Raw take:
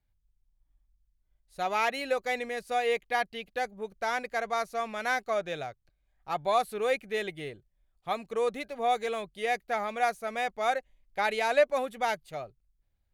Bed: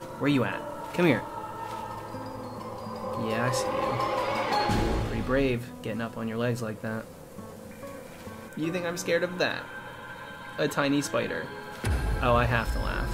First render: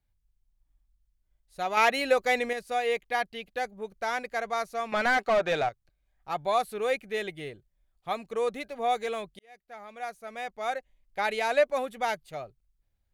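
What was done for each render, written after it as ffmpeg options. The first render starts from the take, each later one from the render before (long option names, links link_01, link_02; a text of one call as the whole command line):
ffmpeg -i in.wav -filter_complex "[0:a]asettb=1/sr,asplit=3[link_01][link_02][link_03];[link_01]atrim=end=4.924[link_04];[link_02]atrim=start=4.92:end=5.69,asetpts=PTS-STARTPTS,afade=type=in:duration=0.004:curve=qsin,afade=type=out:start_time=0.766:duration=0.004:curve=qsin,asplit=2[link_05][link_06];[link_06]highpass=frequency=720:poles=1,volume=22dB,asoftclip=type=tanh:threshold=-15.5dB[link_07];[link_05][link_07]amix=inputs=2:normalize=0,lowpass=frequency=2000:poles=1,volume=-6dB[link_08];[link_03]atrim=start=5.686[link_09];[link_04][link_08]acrossfade=duration=0.004:curve1=hsin:curve2=qsin[link_10];[link_10][link_09]acrossfade=duration=0.004:curve1=qsin:curve2=hsin,asplit=4[link_11][link_12][link_13][link_14];[link_11]atrim=end=1.772[link_15];[link_12]atrim=start=1.768:end=2.532,asetpts=PTS-STARTPTS,volume=5.5dB[link_16];[link_13]atrim=start=2.528:end=9.39,asetpts=PTS-STARTPTS,afade=type=out:start_time=6.858:duration=0.004:curve=hsin[link_17];[link_14]atrim=start=9.39,asetpts=PTS-STARTPTS,afade=type=in:duration=1.92[link_18];[link_15][link_16]acrossfade=duration=0.004:curve1=hsin:curve2=hsin[link_19];[link_17][link_18]concat=n=2:v=0:a=1[link_20];[link_19][link_20]acrossfade=duration=0.004:curve1=hsin:curve2=hsin" out.wav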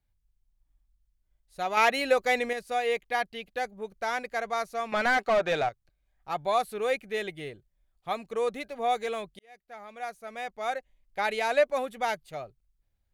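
ffmpeg -i in.wav -af anull out.wav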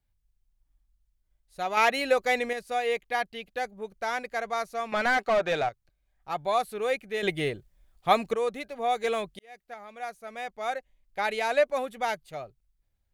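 ffmpeg -i in.wav -filter_complex "[0:a]asplit=5[link_01][link_02][link_03][link_04][link_05];[link_01]atrim=end=7.232[link_06];[link_02]atrim=start=7.228:end=8.342,asetpts=PTS-STARTPTS,volume=10dB[link_07];[link_03]atrim=start=8.338:end=9.042[link_08];[link_04]atrim=start=9.038:end=9.742,asetpts=PTS-STARTPTS,volume=4.5dB[link_09];[link_05]atrim=start=9.738[link_10];[link_06][link_07]acrossfade=duration=0.004:curve1=hsin:curve2=hsin[link_11];[link_11][link_08]acrossfade=duration=0.004:curve1=hsin:curve2=hsin[link_12];[link_12][link_09]acrossfade=duration=0.004:curve1=hsin:curve2=hsin[link_13];[link_13][link_10]acrossfade=duration=0.004:curve1=hsin:curve2=hsin" out.wav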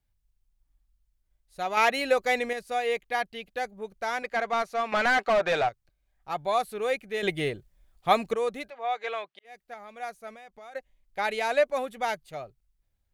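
ffmpeg -i in.wav -filter_complex "[0:a]asettb=1/sr,asplit=3[link_01][link_02][link_03];[link_01]atrim=end=4.224[link_04];[link_02]atrim=start=4.22:end=5.68,asetpts=PTS-STARTPTS,afade=type=in:duration=0.004:curve=qsin,afade=type=out:start_time=1.456:duration=0.004:curve=qsin,asplit=2[link_05][link_06];[link_06]highpass=frequency=720:poles=1,volume=13dB,asoftclip=type=tanh:threshold=-17dB[link_07];[link_05][link_07]amix=inputs=2:normalize=0,lowpass=frequency=2800:poles=1,volume=-6dB[link_08];[link_03]atrim=start=5.676[link_09];[link_04][link_08]acrossfade=duration=0.004:curve1=hsin:curve2=qsin[link_10];[link_10][link_09]acrossfade=duration=0.004:curve1=qsin:curve2=hsin,asplit=3[link_11][link_12][link_13];[link_11]afade=type=out:start_time=8.69:duration=0.02[link_14];[link_12]highpass=700,lowpass=3200,afade=type=in:start_time=8.69:duration=0.02,afade=type=out:start_time=9.44:duration=0.02[link_15];[link_13]afade=type=in:start_time=9.44:duration=0.02[link_16];[link_14][link_15][link_16]amix=inputs=3:normalize=0,asettb=1/sr,asplit=3[link_17][link_18][link_19];[link_17]atrim=end=10.334[link_20];[link_18]atrim=start=10.33:end=10.75,asetpts=PTS-STARTPTS,afade=type=in:duration=0.004:curve=qsin,afade=type=out:start_time=0.416:duration=0.004:curve=qsin,acompressor=threshold=-46dB:ratio=4:attack=3.2:release=140:knee=1:detection=peak[link_21];[link_19]atrim=start=10.746[link_22];[link_20][link_21]acrossfade=duration=0.004:curve1=hsin:curve2=qsin[link_23];[link_23][link_22]acrossfade=duration=0.004:curve1=qsin:curve2=hsin" out.wav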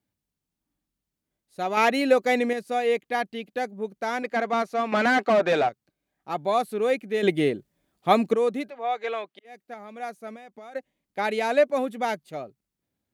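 ffmpeg -i in.wav -af "highpass=140,equalizer=frequency=260:width_type=o:width=1.5:gain=12" out.wav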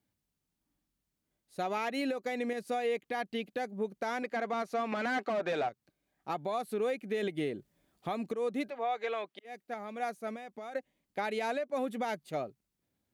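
ffmpeg -i in.wav -af "acompressor=threshold=-27dB:ratio=6,alimiter=level_in=0.5dB:limit=-24dB:level=0:latency=1:release=194,volume=-0.5dB" out.wav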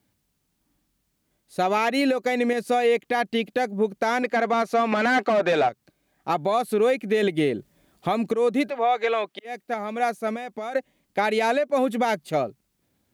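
ffmpeg -i in.wav -af "volume=11.5dB" out.wav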